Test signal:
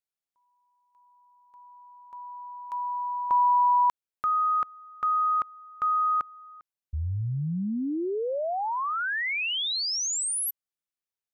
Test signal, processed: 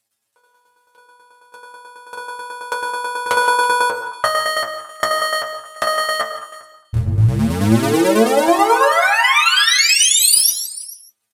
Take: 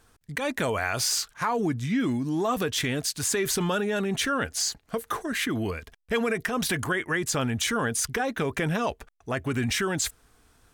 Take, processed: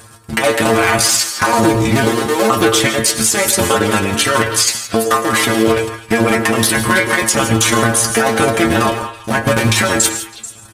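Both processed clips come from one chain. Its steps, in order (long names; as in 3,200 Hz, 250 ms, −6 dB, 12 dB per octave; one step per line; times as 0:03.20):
sub-harmonics by changed cycles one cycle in 2, muted
high-pass filter 53 Hz
parametric band 9,300 Hz +5.5 dB 0.44 octaves
in parallel at +2 dB: downward compressor, threshold −40 dBFS
on the sum: shaped tremolo saw down 9.2 Hz, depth 55%
stiff-string resonator 110 Hz, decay 0.26 s, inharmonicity 0.002
echo through a band-pass that steps 109 ms, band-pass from 450 Hz, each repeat 1.4 octaves, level −8 dB
reverb whose tail is shaped and stops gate 190 ms rising, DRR 10 dB
downsampling to 32,000 Hz
boost into a limiter +27.5 dB
level −1 dB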